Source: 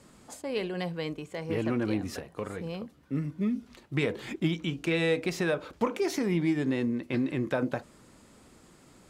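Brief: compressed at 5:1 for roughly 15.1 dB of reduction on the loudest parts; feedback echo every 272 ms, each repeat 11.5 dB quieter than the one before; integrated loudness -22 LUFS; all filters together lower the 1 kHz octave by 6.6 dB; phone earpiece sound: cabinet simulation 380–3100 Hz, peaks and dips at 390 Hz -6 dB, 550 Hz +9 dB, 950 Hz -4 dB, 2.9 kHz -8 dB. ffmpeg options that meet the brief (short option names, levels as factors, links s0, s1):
-af "equalizer=f=1000:t=o:g=-7.5,acompressor=threshold=0.00891:ratio=5,highpass=380,equalizer=f=390:t=q:w=4:g=-6,equalizer=f=550:t=q:w=4:g=9,equalizer=f=950:t=q:w=4:g=-4,equalizer=f=2900:t=q:w=4:g=-8,lowpass=f=3100:w=0.5412,lowpass=f=3100:w=1.3066,aecho=1:1:272|544|816:0.266|0.0718|0.0194,volume=17.8"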